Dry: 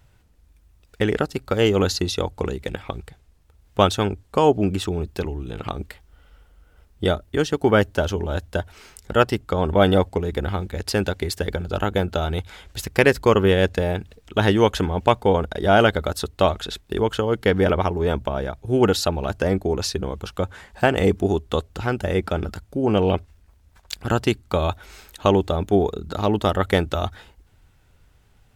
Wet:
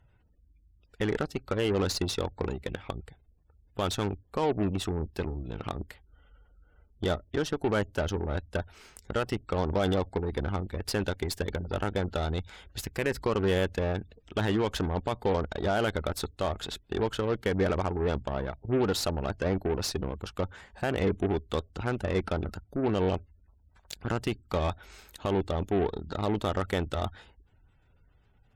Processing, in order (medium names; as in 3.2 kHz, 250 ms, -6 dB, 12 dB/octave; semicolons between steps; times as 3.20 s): peak limiter -11 dBFS, peak gain reduction 9 dB; spectral gate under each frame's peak -30 dB strong; Chebyshev shaper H 8 -22 dB, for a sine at -10.5 dBFS; trim -6.5 dB